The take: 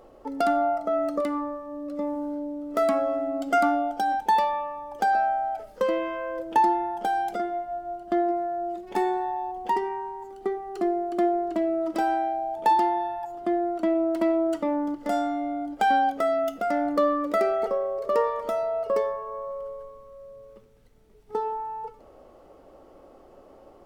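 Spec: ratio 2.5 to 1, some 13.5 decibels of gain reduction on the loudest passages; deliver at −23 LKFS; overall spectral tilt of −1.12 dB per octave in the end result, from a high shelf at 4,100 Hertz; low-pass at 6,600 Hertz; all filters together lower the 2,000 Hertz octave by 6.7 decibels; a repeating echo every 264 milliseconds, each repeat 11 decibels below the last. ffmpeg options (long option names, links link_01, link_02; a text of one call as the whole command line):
ffmpeg -i in.wav -af "lowpass=6600,equalizer=frequency=2000:width_type=o:gain=-8,highshelf=frequency=4100:gain=-7.5,acompressor=threshold=-40dB:ratio=2.5,aecho=1:1:264|528|792:0.282|0.0789|0.0221,volume=15dB" out.wav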